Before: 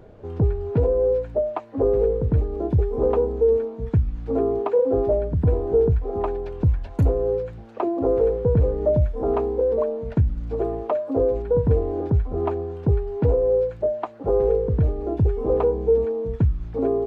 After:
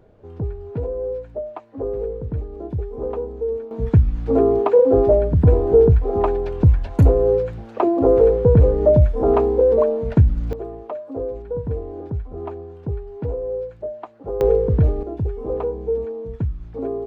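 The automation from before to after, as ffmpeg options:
-af "asetnsamples=n=441:p=0,asendcmd='3.71 volume volume 6dB;10.53 volume volume -6.5dB;14.41 volume volume 4dB;15.03 volume volume -4dB',volume=-6dB"

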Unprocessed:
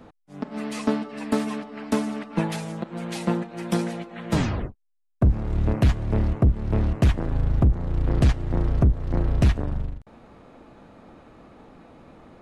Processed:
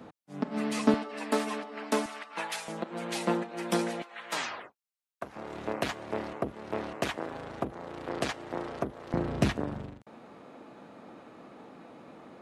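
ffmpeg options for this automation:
-af "asetnsamples=n=441:p=0,asendcmd='0.94 highpass f 380;2.06 highpass f 950;2.68 highpass f 310;4.02 highpass f 950;5.36 highpass f 460;9.14 highpass f 190',highpass=120"

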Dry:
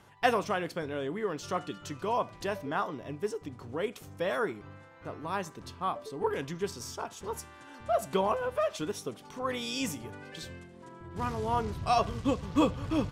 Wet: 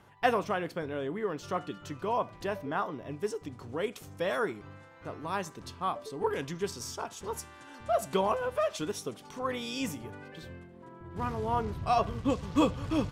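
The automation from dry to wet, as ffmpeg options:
-af "asetnsamples=n=441:p=0,asendcmd='3.11 equalizer g 2;9.47 equalizer g -4.5;10.28 equalizer g -13;11.06 equalizer g -6.5;12.3 equalizer g 1.5',equalizer=f=7.1k:t=o:w=2.2:g=-5.5"

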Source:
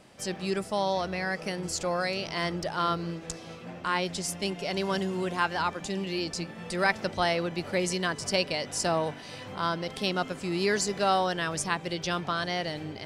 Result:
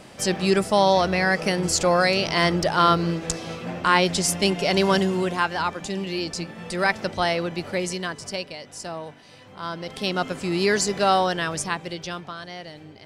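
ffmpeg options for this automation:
-af "volume=22dB,afade=t=out:st=4.85:d=0.61:silence=0.473151,afade=t=out:st=7.52:d=1.03:silence=0.316228,afade=t=in:st=9.52:d=0.82:silence=0.251189,afade=t=out:st=11.23:d=1.12:silence=0.251189"

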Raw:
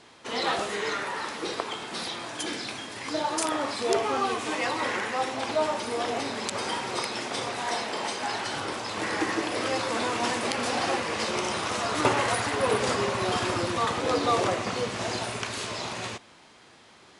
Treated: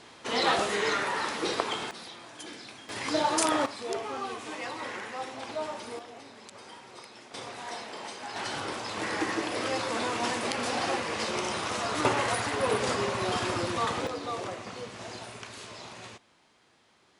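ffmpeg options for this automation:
-af "asetnsamples=n=441:p=0,asendcmd='1.91 volume volume -10.5dB;2.89 volume volume 2dB;3.66 volume volume -8.5dB;5.99 volume volume -17dB;7.34 volume volume -9dB;8.36 volume volume -2.5dB;14.07 volume volume -10.5dB',volume=2dB"

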